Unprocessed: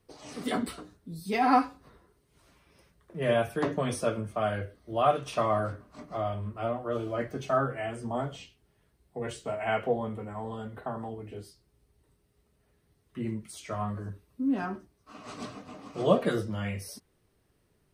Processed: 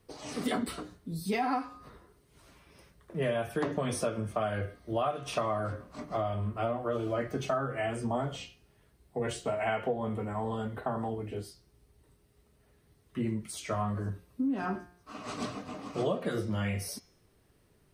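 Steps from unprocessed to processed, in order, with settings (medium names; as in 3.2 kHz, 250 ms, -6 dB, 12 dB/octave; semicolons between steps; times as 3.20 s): de-hum 177.1 Hz, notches 38; compression 10:1, threshold -31 dBFS, peak gain reduction 15 dB; trim +4 dB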